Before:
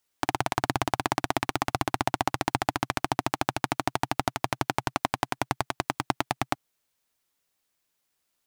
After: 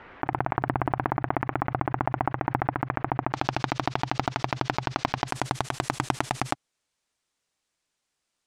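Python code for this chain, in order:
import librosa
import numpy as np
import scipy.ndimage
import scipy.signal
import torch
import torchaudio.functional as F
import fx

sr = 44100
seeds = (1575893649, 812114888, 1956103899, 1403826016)

y = fx.tracing_dist(x, sr, depth_ms=0.42)
y = fx.lowpass(y, sr, hz=fx.steps((0.0, 2000.0), (3.33, 5500.0), (5.28, 9200.0)), slope=24)
y = fx.pre_swell(y, sr, db_per_s=25.0)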